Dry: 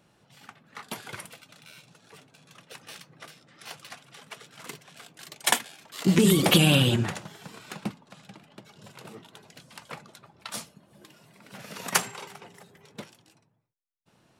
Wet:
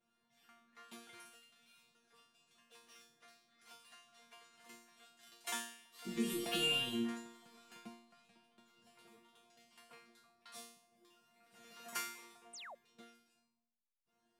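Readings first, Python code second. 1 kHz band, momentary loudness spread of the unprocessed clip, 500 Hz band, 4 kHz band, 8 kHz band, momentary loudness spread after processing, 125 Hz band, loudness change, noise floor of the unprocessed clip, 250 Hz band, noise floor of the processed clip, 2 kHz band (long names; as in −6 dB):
−15.5 dB, 25 LU, −16.5 dB, −13.0 dB, −16.5 dB, 24 LU, −29.5 dB, −15.5 dB, −65 dBFS, −17.0 dB, −82 dBFS, −12.5 dB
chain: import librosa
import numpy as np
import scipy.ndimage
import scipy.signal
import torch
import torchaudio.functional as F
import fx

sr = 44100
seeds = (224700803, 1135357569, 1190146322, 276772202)

y = fx.resonator_bank(x, sr, root=58, chord='fifth', decay_s=0.58)
y = fx.spec_paint(y, sr, seeds[0], shape='fall', start_s=12.53, length_s=0.22, low_hz=490.0, high_hz=9500.0, level_db=-53.0)
y = y * librosa.db_to_amplitude(2.5)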